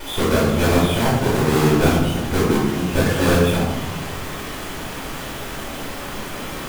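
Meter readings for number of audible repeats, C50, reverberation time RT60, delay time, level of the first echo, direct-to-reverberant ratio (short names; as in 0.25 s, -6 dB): none, 0.5 dB, 1.3 s, none, none, -8.5 dB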